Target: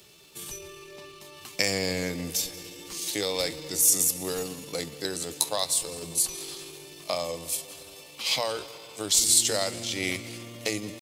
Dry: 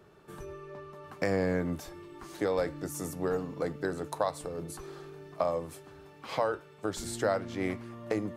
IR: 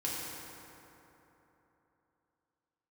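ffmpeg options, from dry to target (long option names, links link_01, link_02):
-filter_complex "[0:a]asplit=2[link_01][link_02];[1:a]atrim=start_sample=2205,adelay=128[link_03];[link_02][link_03]afir=irnorm=-1:irlink=0,volume=-19dB[link_04];[link_01][link_04]amix=inputs=2:normalize=0,atempo=0.76,aexciter=amount=7.8:drive=7.5:freq=2300,volume=-2dB"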